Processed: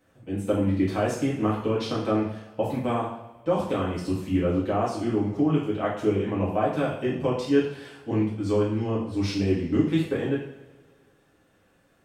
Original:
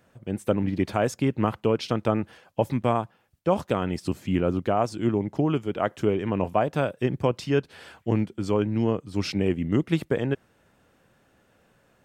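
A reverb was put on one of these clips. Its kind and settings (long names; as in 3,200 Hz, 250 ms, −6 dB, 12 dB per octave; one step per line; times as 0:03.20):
coupled-rooms reverb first 0.59 s, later 1.9 s, from −19 dB, DRR −6.5 dB
level −8.5 dB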